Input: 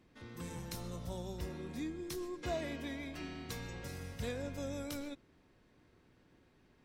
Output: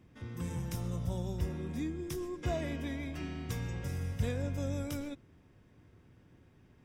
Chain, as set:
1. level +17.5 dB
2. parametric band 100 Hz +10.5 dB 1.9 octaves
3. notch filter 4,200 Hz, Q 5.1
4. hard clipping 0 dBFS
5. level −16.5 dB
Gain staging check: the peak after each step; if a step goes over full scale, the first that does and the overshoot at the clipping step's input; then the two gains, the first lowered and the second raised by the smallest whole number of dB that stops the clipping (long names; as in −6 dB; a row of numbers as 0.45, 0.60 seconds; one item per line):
−11.0, −4.0, −4.0, −4.0, −20.5 dBFS
no step passes full scale